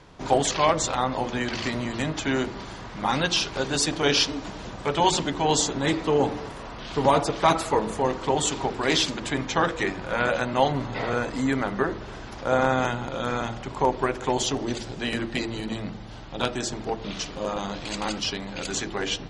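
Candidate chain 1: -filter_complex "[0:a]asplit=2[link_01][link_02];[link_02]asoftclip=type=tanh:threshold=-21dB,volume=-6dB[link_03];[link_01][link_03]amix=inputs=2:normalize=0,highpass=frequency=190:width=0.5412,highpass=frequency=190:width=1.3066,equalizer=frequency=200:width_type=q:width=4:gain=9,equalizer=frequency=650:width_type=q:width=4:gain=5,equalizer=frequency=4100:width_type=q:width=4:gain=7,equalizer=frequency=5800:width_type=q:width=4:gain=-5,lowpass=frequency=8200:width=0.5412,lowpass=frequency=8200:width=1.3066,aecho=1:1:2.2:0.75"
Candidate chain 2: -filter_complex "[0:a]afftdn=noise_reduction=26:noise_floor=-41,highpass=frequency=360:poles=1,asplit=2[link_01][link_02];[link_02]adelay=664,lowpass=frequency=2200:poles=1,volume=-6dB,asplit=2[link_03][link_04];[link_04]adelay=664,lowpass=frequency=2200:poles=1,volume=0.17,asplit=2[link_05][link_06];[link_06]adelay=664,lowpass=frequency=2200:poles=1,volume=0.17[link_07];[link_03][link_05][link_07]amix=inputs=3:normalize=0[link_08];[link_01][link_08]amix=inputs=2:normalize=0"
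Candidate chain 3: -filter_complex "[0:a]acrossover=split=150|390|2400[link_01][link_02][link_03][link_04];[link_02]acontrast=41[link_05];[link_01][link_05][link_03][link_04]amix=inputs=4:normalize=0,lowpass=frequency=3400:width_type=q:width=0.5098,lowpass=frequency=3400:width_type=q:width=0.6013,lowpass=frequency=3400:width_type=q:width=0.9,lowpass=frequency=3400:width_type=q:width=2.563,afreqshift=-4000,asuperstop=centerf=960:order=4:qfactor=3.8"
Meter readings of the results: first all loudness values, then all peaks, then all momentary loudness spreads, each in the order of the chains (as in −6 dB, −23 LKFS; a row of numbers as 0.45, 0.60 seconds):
−20.0, −26.5, −21.0 LKFS; −2.0, −7.5, −5.5 dBFS; 10, 10, 10 LU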